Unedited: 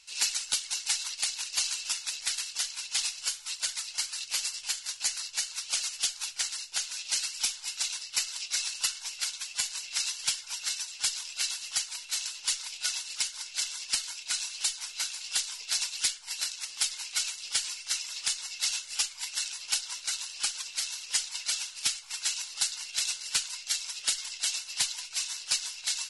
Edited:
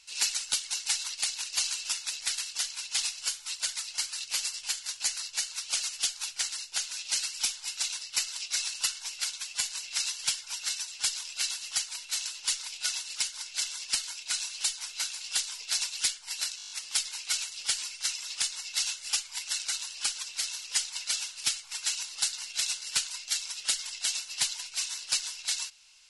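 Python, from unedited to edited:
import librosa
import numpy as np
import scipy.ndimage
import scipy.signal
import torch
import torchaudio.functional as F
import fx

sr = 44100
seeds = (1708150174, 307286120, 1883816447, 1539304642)

y = fx.edit(x, sr, fx.stutter(start_s=16.57, slice_s=0.02, count=8),
    fx.cut(start_s=19.51, length_s=0.53), tone=tone)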